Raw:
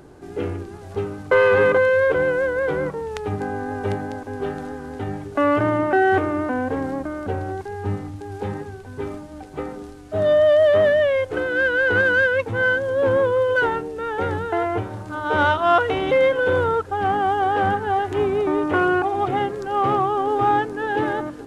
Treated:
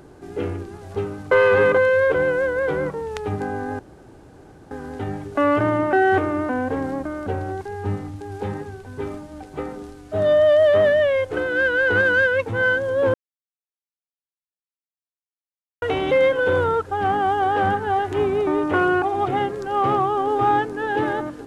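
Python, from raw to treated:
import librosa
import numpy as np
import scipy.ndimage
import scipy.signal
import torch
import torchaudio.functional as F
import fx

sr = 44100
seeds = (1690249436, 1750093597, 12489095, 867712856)

y = fx.edit(x, sr, fx.room_tone_fill(start_s=3.79, length_s=0.92),
    fx.silence(start_s=13.14, length_s=2.68), tone=tone)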